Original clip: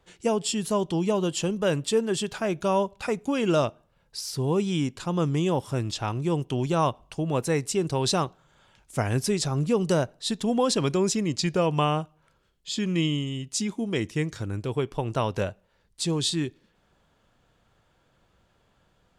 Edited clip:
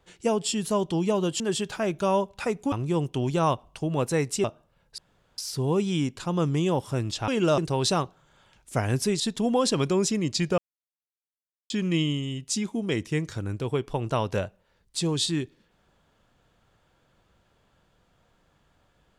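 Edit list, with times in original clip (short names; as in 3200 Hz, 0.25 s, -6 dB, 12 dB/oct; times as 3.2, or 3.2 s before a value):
1.4–2.02 cut
3.34–3.64 swap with 6.08–7.8
4.18 insert room tone 0.40 s
9.42–10.24 cut
11.62–12.74 mute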